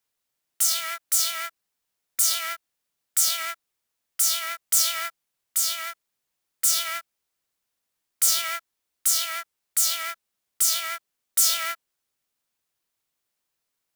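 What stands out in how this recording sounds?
noise floor -81 dBFS; spectral tilt +3.0 dB/octave

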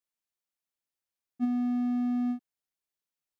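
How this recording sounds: noise floor -92 dBFS; spectral tilt -6.5 dB/octave

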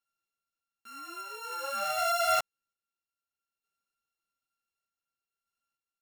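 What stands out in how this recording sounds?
a buzz of ramps at a fixed pitch in blocks of 32 samples; random-step tremolo 3.3 Hz, depth 55%; a shimmering, thickened sound

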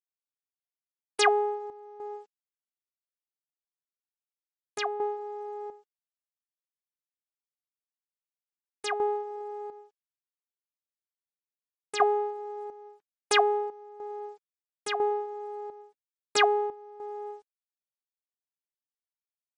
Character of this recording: a quantiser's noise floor 12-bit, dither none; chopped level 1 Hz, depth 65%, duty 70%; MP3

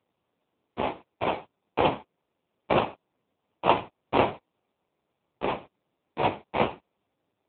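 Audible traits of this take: aliases and images of a low sample rate 1.7 kHz, jitter 20%; AMR-NB

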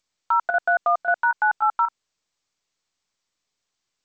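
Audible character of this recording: chopped level 3.7 Hz, depth 65%, duty 85%; G.722

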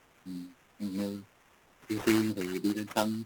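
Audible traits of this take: a quantiser's noise floor 10-bit, dither triangular; phasing stages 12, 3.1 Hz, lowest notch 710–2300 Hz; aliases and images of a low sample rate 4.4 kHz, jitter 20%; AAC

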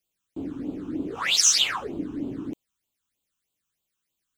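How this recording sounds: phasing stages 8, 3.2 Hz, lowest notch 580–1800 Hz

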